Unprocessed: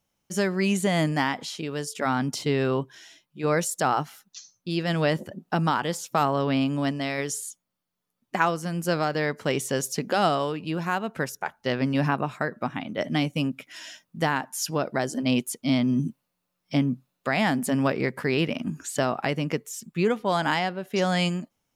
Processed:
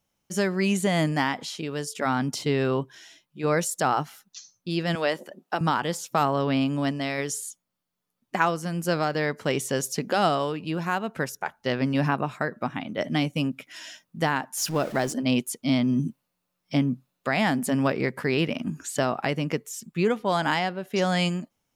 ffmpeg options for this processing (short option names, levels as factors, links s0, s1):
-filter_complex "[0:a]asettb=1/sr,asplit=3[s0][s1][s2];[s0]atrim=end=4.954[s3];[s1]atrim=start=4.95:end=5.61,asetpts=PTS-STARTPTS,afade=t=in:d=0.004:c=qsin,afade=t=out:st=0.656:d=0.004:c=qsin,highpass=390[s4];[s2]atrim=start=5.606[s5];[s3][s4]acrossfade=d=0.004:c1=hsin:c2=qsin[s6];[s6][s5]acrossfade=d=0.004:c1=qsin:c2=hsin,asettb=1/sr,asplit=3[s7][s8][s9];[s7]atrim=end=14.574[s10];[s8]atrim=start=14.57:end=15.13,asetpts=PTS-STARTPTS,afade=t=in:d=0.004:c=qsin,afade=t=out:st=0.556:d=0.004:c=qsin,aeval=exprs='val(0)+0.5*0.0178*sgn(val(0))':c=same[s11];[s9]atrim=start=15.126[s12];[s10][s11]acrossfade=d=0.004:c1=hsin:c2=qsin[s13];[s13][s12]acrossfade=d=0.004:c1=qsin:c2=hsin"